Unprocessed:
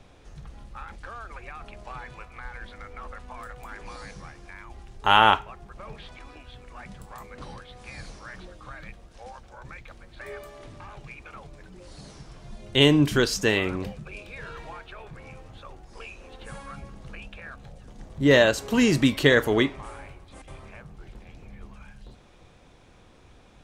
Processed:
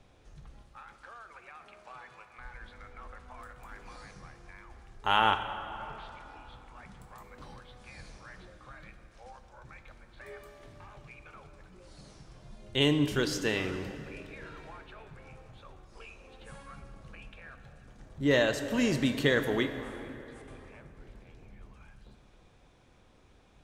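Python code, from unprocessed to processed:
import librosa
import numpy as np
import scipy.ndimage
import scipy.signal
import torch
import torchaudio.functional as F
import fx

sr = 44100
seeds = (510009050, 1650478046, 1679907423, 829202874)

y = fx.highpass(x, sr, hz=420.0, slope=6, at=(0.61, 2.39))
y = fx.rev_plate(y, sr, seeds[0], rt60_s=3.4, hf_ratio=0.6, predelay_ms=0, drr_db=8.5)
y = y * librosa.db_to_amplitude(-8.0)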